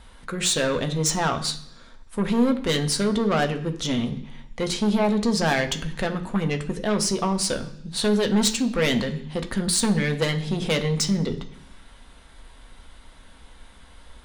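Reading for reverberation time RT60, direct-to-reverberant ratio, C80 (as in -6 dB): 0.70 s, 4.5 dB, 15.5 dB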